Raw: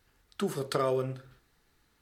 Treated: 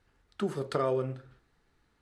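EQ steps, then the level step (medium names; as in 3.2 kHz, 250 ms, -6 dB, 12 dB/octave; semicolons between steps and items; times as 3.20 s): low-pass 11 kHz 24 dB/octave; treble shelf 3.4 kHz -10 dB; 0.0 dB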